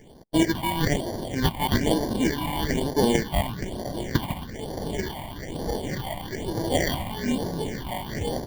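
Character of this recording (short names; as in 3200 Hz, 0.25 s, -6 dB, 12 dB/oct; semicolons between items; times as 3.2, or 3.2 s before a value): aliases and images of a low sample rate 1300 Hz, jitter 0%; phasing stages 6, 1.1 Hz, lowest notch 410–2500 Hz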